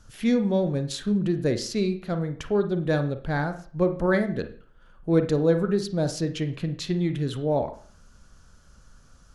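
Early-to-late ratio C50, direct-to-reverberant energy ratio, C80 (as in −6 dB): 10.5 dB, 8.0 dB, 16.5 dB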